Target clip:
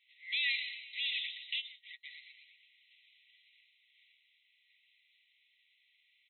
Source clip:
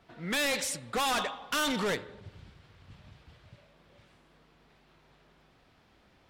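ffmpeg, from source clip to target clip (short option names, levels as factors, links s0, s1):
-filter_complex "[0:a]asplit=7[s0][s1][s2][s3][s4][s5][s6];[s1]adelay=120,afreqshift=110,volume=0.266[s7];[s2]adelay=240,afreqshift=220,volume=0.146[s8];[s3]adelay=360,afreqshift=330,volume=0.0804[s9];[s4]adelay=480,afreqshift=440,volume=0.0442[s10];[s5]adelay=600,afreqshift=550,volume=0.0243[s11];[s6]adelay=720,afreqshift=660,volume=0.0133[s12];[s0][s7][s8][s9][s10][s11][s12]amix=inputs=7:normalize=0,asplit=3[s13][s14][s15];[s13]afade=t=out:st=1.6:d=0.02[s16];[s14]agate=range=0.0158:threshold=0.0447:ratio=16:detection=peak,afade=t=in:st=1.6:d=0.02,afade=t=out:st=2.03:d=0.02[s17];[s15]afade=t=in:st=2.03:d=0.02[s18];[s16][s17][s18]amix=inputs=3:normalize=0,afftfilt=real='re*between(b*sr/4096,1900,4100)':imag='im*between(b*sr/4096,1900,4100)':win_size=4096:overlap=0.75"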